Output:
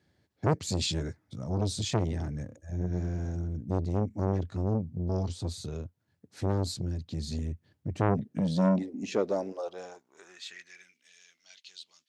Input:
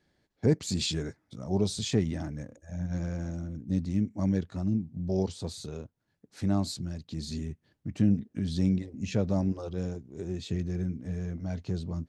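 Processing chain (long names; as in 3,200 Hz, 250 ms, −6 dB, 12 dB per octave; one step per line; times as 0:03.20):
0:02.78–0:03.36: flutter between parallel walls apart 4.7 metres, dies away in 0.24 s
high-pass filter sweep 85 Hz → 3,200 Hz, 0:07.90–0:11.11
saturating transformer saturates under 680 Hz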